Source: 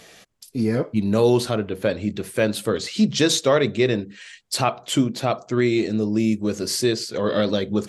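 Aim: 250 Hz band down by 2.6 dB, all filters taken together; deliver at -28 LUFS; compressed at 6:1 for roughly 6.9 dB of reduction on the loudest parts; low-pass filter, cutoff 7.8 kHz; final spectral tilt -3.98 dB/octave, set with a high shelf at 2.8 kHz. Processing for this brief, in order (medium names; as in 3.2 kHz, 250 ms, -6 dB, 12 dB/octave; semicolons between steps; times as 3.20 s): low-pass 7.8 kHz; peaking EQ 250 Hz -3.5 dB; treble shelf 2.8 kHz +5.5 dB; compression 6:1, threshold -21 dBFS; trim -1.5 dB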